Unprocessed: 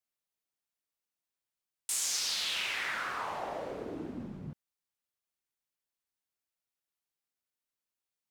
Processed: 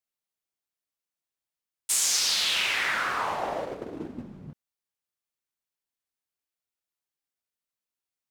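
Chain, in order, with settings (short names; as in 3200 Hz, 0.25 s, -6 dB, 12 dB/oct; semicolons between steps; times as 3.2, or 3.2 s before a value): gate -38 dBFS, range -9 dB; gain +8 dB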